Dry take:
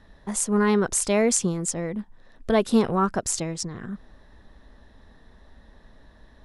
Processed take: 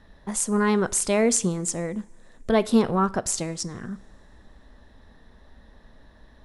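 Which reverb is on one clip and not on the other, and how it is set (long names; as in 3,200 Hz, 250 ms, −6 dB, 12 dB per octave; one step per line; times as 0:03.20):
coupled-rooms reverb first 0.52 s, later 3 s, from −21 dB, DRR 17 dB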